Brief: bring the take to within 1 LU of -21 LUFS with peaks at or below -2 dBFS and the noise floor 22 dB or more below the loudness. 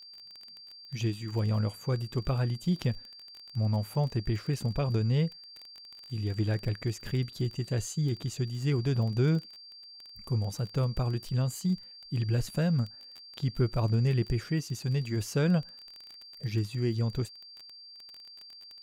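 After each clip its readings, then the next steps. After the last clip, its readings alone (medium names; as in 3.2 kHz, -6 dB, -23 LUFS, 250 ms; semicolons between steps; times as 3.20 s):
tick rate 22 per s; steady tone 4.7 kHz; tone level -47 dBFS; loudness -31.0 LUFS; peak level -15.0 dBFS; loudness target -21.0 LUFS
-> de-click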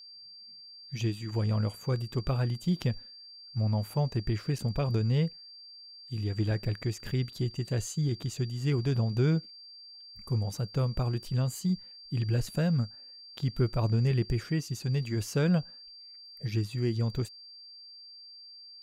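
tick rate 0 per s; steady tone 4.7 kHz; tone level -47 dBFS
-> band-stop 4.7 kHz, Q 30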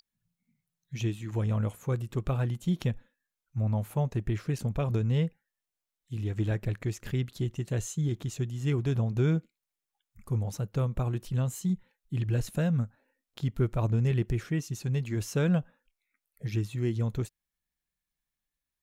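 steady tone not found; loudness -31.0 LUFS; peak level -15.0 dBFS; loudness target -21.0 LUFS
-> trim +10 dB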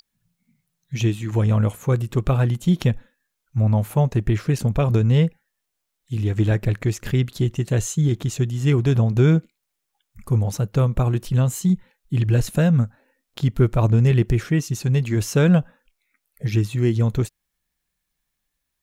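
loudness -21.0 LUFS; peak level -5.0 dBFS; noise floor -79 dBFS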